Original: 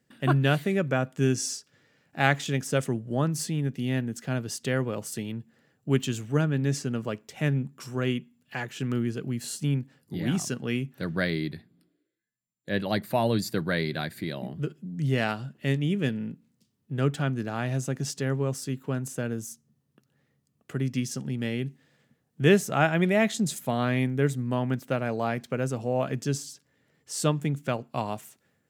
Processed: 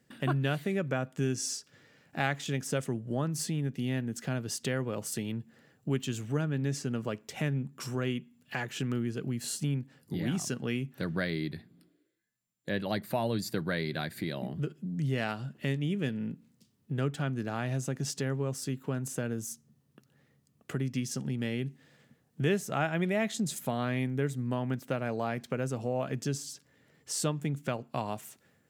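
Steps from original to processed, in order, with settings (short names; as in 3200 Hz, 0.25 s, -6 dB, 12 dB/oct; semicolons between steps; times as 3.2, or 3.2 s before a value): compressor 2:1, threshold -38 dBFS, peak gain reduction 13 dB; gain +3.5 dB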